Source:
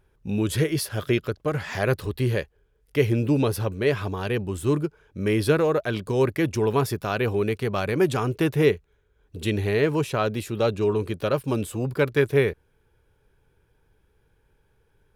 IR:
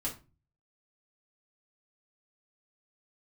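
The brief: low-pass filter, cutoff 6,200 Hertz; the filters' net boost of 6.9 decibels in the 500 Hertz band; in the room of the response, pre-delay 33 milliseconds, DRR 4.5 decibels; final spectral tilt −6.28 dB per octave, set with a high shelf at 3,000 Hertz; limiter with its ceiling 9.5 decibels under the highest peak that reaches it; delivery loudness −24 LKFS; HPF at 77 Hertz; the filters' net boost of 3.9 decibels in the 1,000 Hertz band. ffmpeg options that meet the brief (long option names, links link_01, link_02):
-filter_complex "[0:a]highpass=77,lowpass=6200,equalizer=frequency=500:width_type=o:gain=8,equalizer=frequency=1000:width_type=o:gain=3.5,highshelf=frequency=3000:gain=-8,alimiter=limit=-12dB:level=0:latency=1,asplit=2[link_01][link_02];[1:a]atrim=start_sample=2205,adelay=33[link_03];[link_02][link_03]afir=irnorm=-1:irlink=0,volume=-6.5dB[link_04];[link_01][link_04]amix=inputs=2:normalize=0,volume=-3dB"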